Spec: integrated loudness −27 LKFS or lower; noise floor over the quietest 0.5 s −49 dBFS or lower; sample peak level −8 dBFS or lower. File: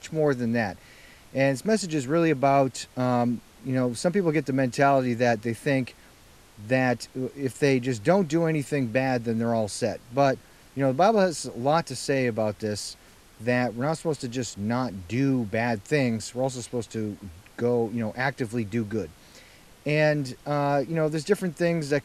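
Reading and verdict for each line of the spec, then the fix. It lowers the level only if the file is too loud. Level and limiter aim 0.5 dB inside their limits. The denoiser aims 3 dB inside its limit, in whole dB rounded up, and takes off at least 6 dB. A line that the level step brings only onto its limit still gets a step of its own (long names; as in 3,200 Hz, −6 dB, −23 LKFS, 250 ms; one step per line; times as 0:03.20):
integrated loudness −26.0 LKFS: out of spec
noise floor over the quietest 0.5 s −53 dBFS: in spec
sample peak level −6.5 dBFS: out of spec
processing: level −1.5 dB
brickwall limiter −8.5 dBFS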